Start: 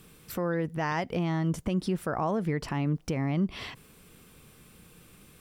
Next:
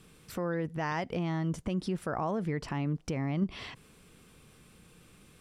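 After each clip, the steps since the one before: low-pass 10 kHz 12 dB/octave; in parallel at -1 dB: level held to a coarse grid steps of 12 dB; on the sum: trim -6 dB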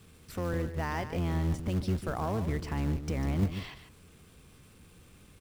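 octave divider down 1 oct, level +2 dB; delay 147 ms -10.5 dB; in parallel at -6 dB: companded quantiser 4-bit; on the sum: trim -5.5 dB

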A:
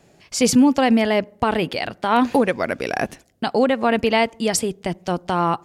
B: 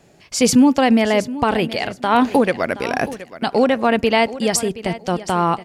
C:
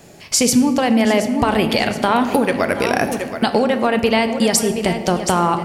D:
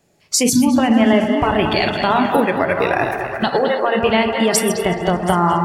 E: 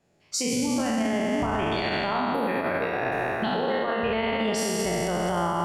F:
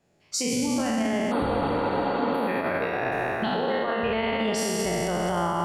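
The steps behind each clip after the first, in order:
feedback delay 723 ms, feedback 24%, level -15.5 dB; trim +2 dB
treble shelf 9 kHz +10.5 dB; compression, threshold -21 dBFS, peak gain reduction 12 dB; on a send at -8 dB: reverberation RT60 1.8 s, pre-delay 4 ms; on the sum: trim +7.5 dB
backward echo that repeats 113 ms, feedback 61%, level -6 dB; spectral noise reduction 17 dB; repeats whose band climbs or falls 213 ms, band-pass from 3.4 kHz, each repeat -0.7 oct, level -7.5 dB
spectral sustain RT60 2.63 s; treble shelf 7.6 kHz -12 dB; peak limiter -8.5 dBFS, peak gain reduction 9.5 dB; trim -9 dB
spectral replace 1.34–2.32 s, 270–8300 Hz after

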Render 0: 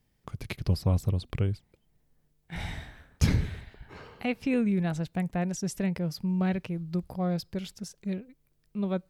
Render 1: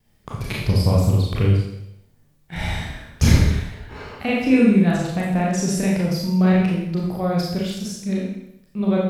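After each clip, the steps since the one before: vibrato 0.43 Hz 7.7 cents; Schroeder reverb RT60 0.78 s, combs from 27 ms, DRR -4.5 dB; trim +5.5 dB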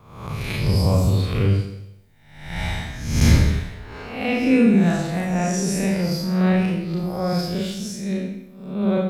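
reverse spectral sustain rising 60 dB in 0.74 s; trim -2.5 dB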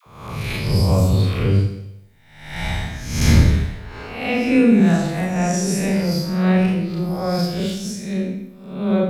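phase dispersion lows, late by 63 ms, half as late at 620 Hz; trim +2 dB

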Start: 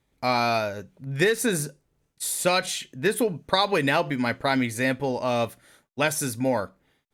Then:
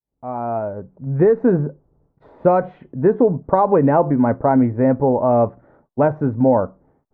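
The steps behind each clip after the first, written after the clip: fade-in on the opening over 1.44 s; low-pass 1 kHz 24 dB/octave; in parallel at -2 dB: peak limiter -19.5 dBFS, peak gain reduction 10 dB; on the sum: trim +6 dB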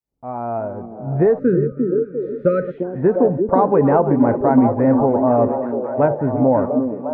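backward echo that repeats 287 ms, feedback 44%, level -13.5 dB; repeats whose band climbs or falls 349 ms, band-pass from 290 Hz, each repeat 0.7 oct, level -2 dB; spectral selection erased 1.39–2.78 s, 600–1200 Hz; trim -1 dB

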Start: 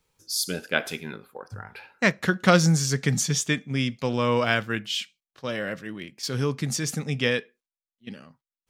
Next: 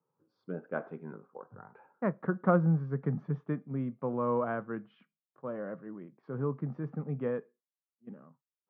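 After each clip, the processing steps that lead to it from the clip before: elliptic band-pass 140–1200 Hz, stop band 70 dB; trim -6 dB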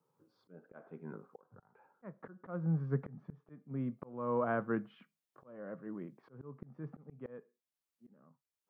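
slow attack 696 ms; trim +3.5 dB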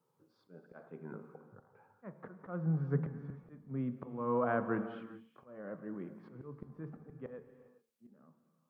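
de-hum 75.49 Hz, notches 16; wow and flutter 26 cents; gated-style reverb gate 440 ms flat, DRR 10 dB; trim +1 dB

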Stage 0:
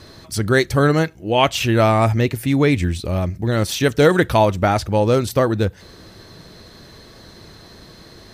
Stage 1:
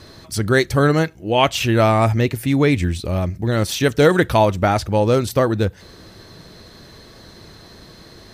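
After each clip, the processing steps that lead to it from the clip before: no audible change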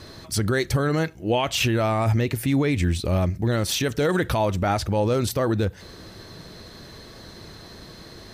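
peak limiter -12.5 dBFS, peak gain reduction 11 dB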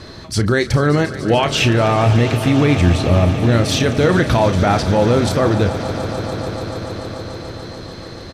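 distance through air 55 m; doubling 34 ms -11 dB; echo with a slow build-up 145 ms, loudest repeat 5, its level -16 dB; trim +7 dB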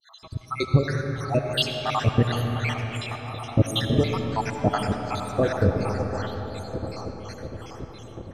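random holes in the spectrogram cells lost 75%; harmonic tremolo 2.8 Hz, depth 100%, crossover 670 Hz; reverberation RT60 4.6 s, pre-delay 40 ms, DRR 4.5 dB

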